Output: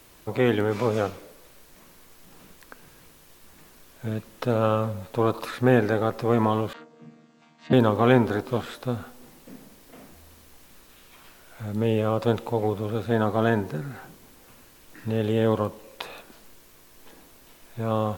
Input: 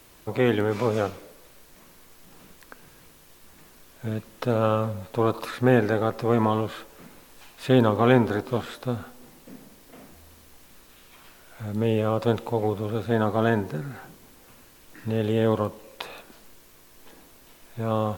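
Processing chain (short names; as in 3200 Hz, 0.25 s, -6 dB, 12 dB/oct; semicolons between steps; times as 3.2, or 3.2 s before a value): 6.73–7.73 chord vocoder bare fifth, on D#3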